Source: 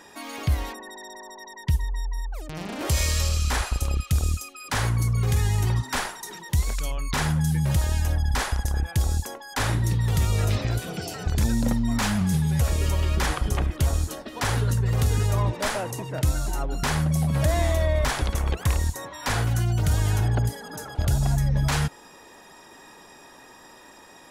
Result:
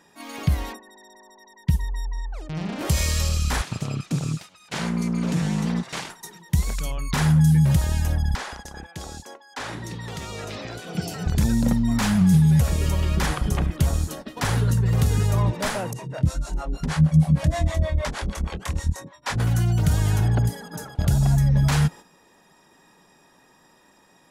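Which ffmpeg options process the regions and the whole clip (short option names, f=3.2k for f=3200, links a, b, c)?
-filter_complex "[0:a]asettb=1/sr,asplit=3[a][b][c];[a]atrim=end=2.064[d];[b]atrim=start=2.06:end=2.78,asetpts=PTS-STARTPTS,afade=t=in:d=0.004:c=qsin,afade=t=out:st=0.716:d=0.004:c=qsin,lowpass=6.1k,bandreject=f=89.96:t=h:w=4,bandreject=f=179.92:t=h:w=4,bandreject=f=269.88:t=h:w=4,bandreject=f=359.84:t=h:w=4,bandreject=f=449.8:t=h:w=4,bandreject=f=539.76:t=h:w=4,bandreject=f=629.72:t=h:w=4,bandreject=f=719.68:t=h:w=4,bandreject=f=809.64:t=h:w=4,bandreject=f=899.6:t=h:w=4,bandreject=f=989.56:t=h:w=4,bandreject=f=1.07952k:t=h:w=4,bandreject=f=1.16948k:t=h:w=4,bandreject=f=1.25944k:t=h:w=4,bandreject=f=1.3494k:t=h:w=4,bandreject=f=1.43936k:t=h:w=4,bandreject=f=1.52932k:t=h:w=4,bandreject=f=1.61928k:t=h:w=4,bandreject=f=1.70924k:t=h:w=4,bandreject=f=1.7992k:t=h:w=4[e];[c]atrim=start=2.776[f];[d][e]acrossfade=d=0.004:c1=hsin:c2=qsin[g];[g][f]acrossfade=d=0.004:c1=qsin:c2=hsin,asettb=1/sr,asplit=3[h][i][j];[h]atrim=end=3.624[k];[i]atrim=start=3.62:end=6.1,asetpts=PTS-STARTPTS,afade=t=in:d=0.004:c=qsin,afade=t=out:st=2.476:d=0.004:c=qsin,aeval=exprs='abs(val(0))':c=same,acompressor=mode=upward:threshold=-29dB:ratio=2.5:attack=3.2:release=140:knee=2.83:detection=peak,highpass=110,lowpass=7.4k[l];[j]atrim=start=6.096[m];[k][l]acrossfade=d=0.004:c1=hsin:c2=qsin[n];[n][m]acrossfade=d=0.004:c1=qsin:c2=hsin,asettb=1/sr,asplit=3[o][p][q];[o]atrim=end=8.354[r];[p]atrim=start=8.35:end=10.95,asetpts=PTS-STARTPTS,afade=t=in:d=0.004:c=qsin,afade=t=out:st=2.596:d=0.004:c=qsin,acrossover=split=260 7800:gain=0.141 1 0.224[s][t][u];[s][t][u]amix=inputs=3:normalize=0,acompressor=threshold=-32dB:ratio=2:attack=3.2:release=140:knee=1:detection=peak[v];[q]atrim=start=10.946[w];[r][v]acrossfade=d=0.004:c1=hsin:c2=qsin[x];[x][w]acrossfade=d=0.004:c1=qsin:c2=hsin,asettb=1/sr,asplit=3[y][z][aa];[y]atrim=end=15.934[ab];[z]atrim=start=15.93:end=19.4,asetpts=PTS-STARTPTS,afade=t=in:d=0.004:c=qsin,afade=t=out:st=3.466:d=0.004:c=qsin,lowpass=8.9k,asplit=2[ac][ad];[ad]adelay=25,volume=-4.5dB[ae];[ac][ae]amix=inputs=2:normalize=0,atrim=end_sample=153027,acrossover=split=430[af][ag];[af]aeval=exprs='val(0)*(1-1/2+1/2*cos(2*PI*6.4*n/s))':c=same[ah];[ag]aeval=exprs='val(0)*(1-1/2-1/2*cos(2*PI*6.4*n/s))':c=same[ai];[ah][ai]amix=inputs=2:normalize=0[aj];[aa]atrim=start=19.396[ak];[ab][aj]acrossfade=d=0.004:c1=hsin:c2=qsin[al];[al][ak]acrossfade=d=0.004:c1=qsin:c2=hsin,equalizer=f=170:w=2:g=9,agate=range=-9dB:threshold=-36dB:ratio=16:detection=peak"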